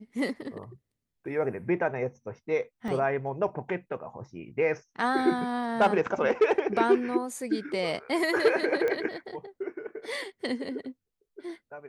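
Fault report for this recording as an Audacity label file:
2.880000	2.880000	drop-out 2.1 ms
8.880000	8.880000	click −18 dBFS

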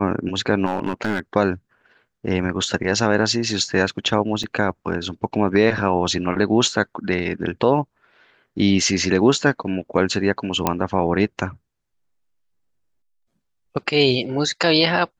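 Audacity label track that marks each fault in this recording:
0.650000	1.200000	clipping −16.5 dBFS
4.430000	4.430000	drop-out 4.4 ms
10.670000	10.670000	click −3 dBFS

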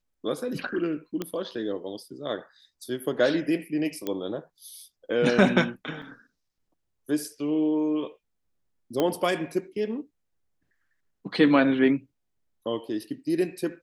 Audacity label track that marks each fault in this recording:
1.220000	1.220000	click −16 dBFS
4.070000	4.070000	click −16 dBFS
6.020000	6.030000	drop-out 5 ms
9.000000	9.000000	click −12 dBFS

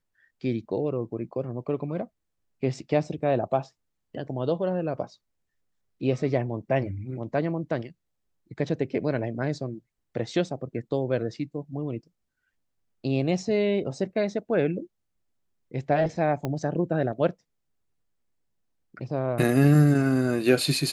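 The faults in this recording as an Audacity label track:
16.450000	16.450000	click −16 dBFS

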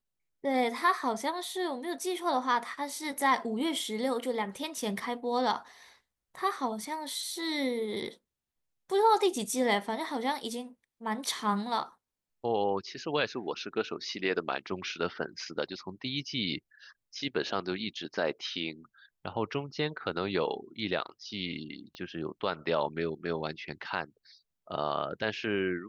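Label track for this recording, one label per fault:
21.950000	21.950000	click −29 dBFS

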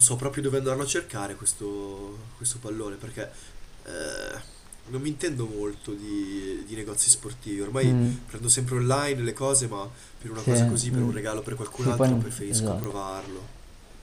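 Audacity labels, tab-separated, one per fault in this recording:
12.840000	12.840000	click −17 dBFS

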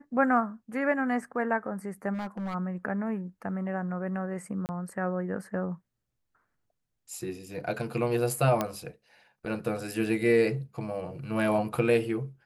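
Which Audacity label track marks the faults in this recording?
2.130000	2.550000	clipping −31 dBFS
4.660000	4.690000	drop-out 29 ms
8.610000	8.610000	click −13 dBFS

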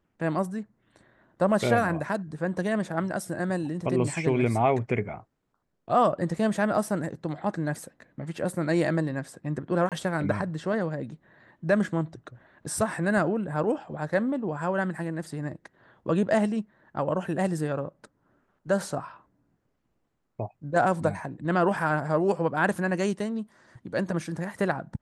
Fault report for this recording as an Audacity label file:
9.890000	9.920000	drop-out 27 ms

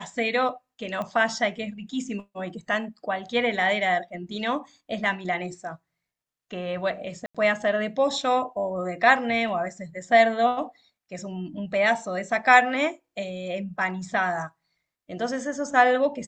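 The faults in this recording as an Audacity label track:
1.020000	1.020000	click −20 dBFS
7.260000	7.350000	drop-out 86 ms

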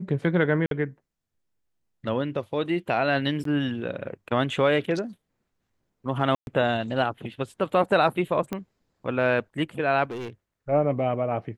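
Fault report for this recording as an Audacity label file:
0.660000	0.710000	drop-out 52 ms
3.440000	3.450000	drop-out 13 ms
6.350000	6.470000	drop-out 121 ms
8.530000	8.530000	click −16 dBFS
10.040000	10.300000	clipping −30.5 dBFS

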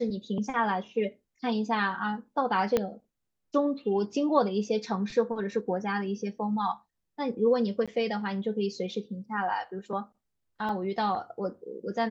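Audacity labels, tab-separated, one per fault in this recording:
2.770000	2.770000	click −12 dBFS
7.860000	7.880000	drop-out 16 ms
10.690000	10.690000	drop-out 2.3 ms

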